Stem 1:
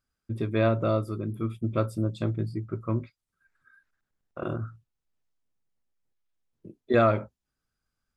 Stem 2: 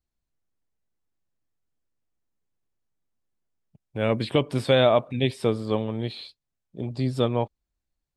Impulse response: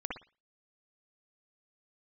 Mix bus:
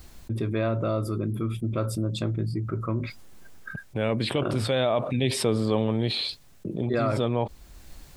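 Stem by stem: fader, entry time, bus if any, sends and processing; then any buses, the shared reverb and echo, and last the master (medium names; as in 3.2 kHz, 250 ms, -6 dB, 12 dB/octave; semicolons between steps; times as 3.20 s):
-11.0 dB, 0.00 s, no send, expander -53 dBFS
-2.5 dB, 0.00 s, no send, auto duck -8 dB, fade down 0.95 s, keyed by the first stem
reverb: none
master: level flattener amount 70%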